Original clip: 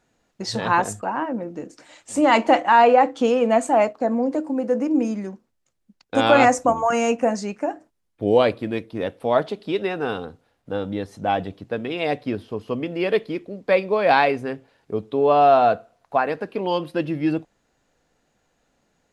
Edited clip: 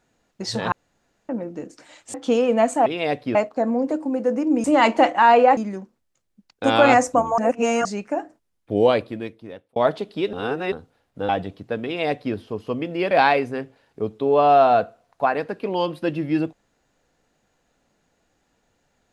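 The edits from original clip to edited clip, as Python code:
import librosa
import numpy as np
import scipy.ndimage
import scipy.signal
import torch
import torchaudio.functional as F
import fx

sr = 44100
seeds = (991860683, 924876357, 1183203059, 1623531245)

y = fx.edit(x, sr, fx.room_tone_fill(start_s=0.72, length_s=0.57),
    fx.move(start_s=2.14, length_s=0.93, to_s=5.08),
    fx.reverse_span(start_s=6.89, length_s=0.47),
    fx.fade_out_span(start_s=8.34, length_s=0.93),
    fx.reverse_span(start_s=9.84, length_s=0.39),
    fx.cut(start_s=10.8, length_s=0.5),
    fx.duplicate(start_s=11.86, length_s=0.49, to_s=3.79),
    fx.cut(start_s=13.12, length_s=0.91), tone=tone)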